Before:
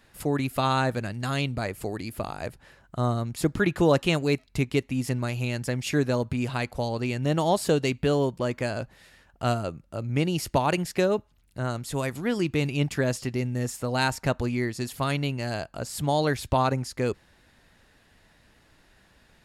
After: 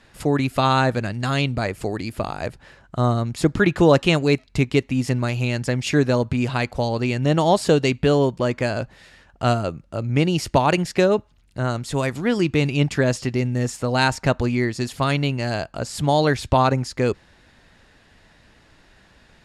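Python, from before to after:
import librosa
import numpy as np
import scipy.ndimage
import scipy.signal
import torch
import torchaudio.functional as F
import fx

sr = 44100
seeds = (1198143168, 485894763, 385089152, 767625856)

y = scipy.signal.sosfilt(scipy.signal.butter(2, 7800.0, 'lowpass', fs=sr, output='sos'), x)
y = y * 10.0 ** (6.0 / 20.0)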